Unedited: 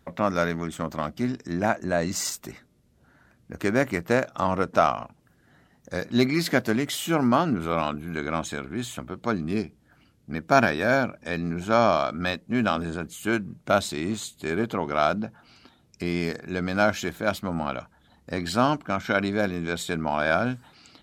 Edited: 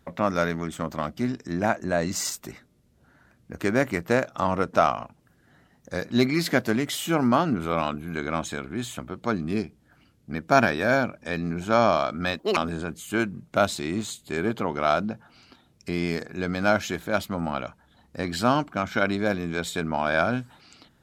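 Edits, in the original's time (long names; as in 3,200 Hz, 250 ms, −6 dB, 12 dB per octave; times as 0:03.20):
0:12.39–0:12.70: play speed 175%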